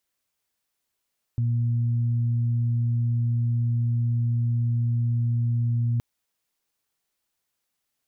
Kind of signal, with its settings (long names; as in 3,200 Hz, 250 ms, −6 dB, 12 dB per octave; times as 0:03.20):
steady harmonic partials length 4.62 s, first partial 118 Hz, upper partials −15.5 dB, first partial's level −20.5 dB